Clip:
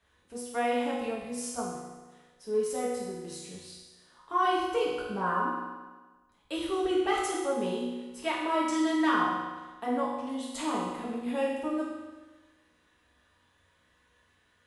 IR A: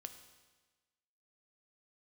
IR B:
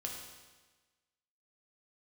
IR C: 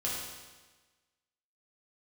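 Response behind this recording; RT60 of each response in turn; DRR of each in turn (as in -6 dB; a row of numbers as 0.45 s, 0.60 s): C; 1.3 s, 1.3 s, 1.3 s; 7.5 dB, -0.5 dB, -6.5 dB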